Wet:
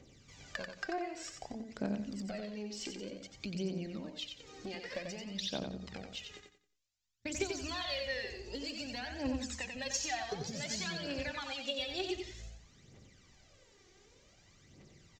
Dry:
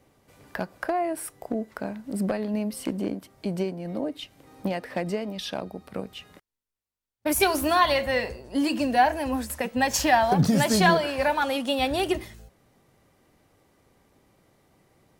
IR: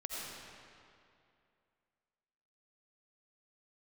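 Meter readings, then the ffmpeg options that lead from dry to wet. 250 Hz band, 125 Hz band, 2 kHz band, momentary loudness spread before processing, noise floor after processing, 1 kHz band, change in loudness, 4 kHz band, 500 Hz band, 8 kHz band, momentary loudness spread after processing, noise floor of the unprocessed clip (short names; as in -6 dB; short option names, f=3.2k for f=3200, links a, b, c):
-14.0 dB, -14.5 dB, -13.0 dB, 15 LU, -66 dBFS, -20.5 dB, -14.0 dB, -7.5 dB, -15.0 dB, -9.0 dB, 9 LU, under -85 dBFS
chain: -af "equalizer=f=920:t=o:w=1.5:g=-8,aresample=16000,aresample=44100,highshelf=f=2.5k:g=10.5,acompressor=threshold=-38dB:ratio=4,aphaser=in_gain=1:out_gain=1:delay=2.8:decay=0.68:speed=0.54:type=triangular,bandreject=f=60:t=h:w=6,bandreject=f=120:t=h:w=6,bandreject=f=180:t=h:w=6,bandreject=f=240:t=h:w=6,bandreject=f=300:t=h:w=6,aecho=1:1:90|180|270|360:0.531|0.149|0.0416|0.0117,volume=-3.5dB"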